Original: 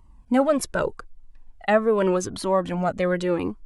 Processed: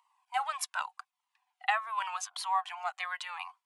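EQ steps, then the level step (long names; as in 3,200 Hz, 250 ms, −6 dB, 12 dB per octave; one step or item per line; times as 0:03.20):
Chebyshev high-pass with heavy ripple 730 Hz, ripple 6 dB
0.0 dB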